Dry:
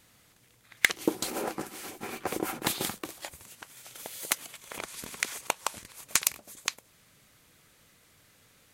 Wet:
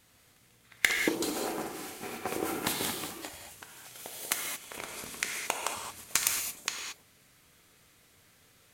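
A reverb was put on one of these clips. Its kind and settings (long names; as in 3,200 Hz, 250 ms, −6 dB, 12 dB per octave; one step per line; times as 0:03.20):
reverb whose tail is shaped and stops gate 250 ms flat, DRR 1 dB
level −3 dB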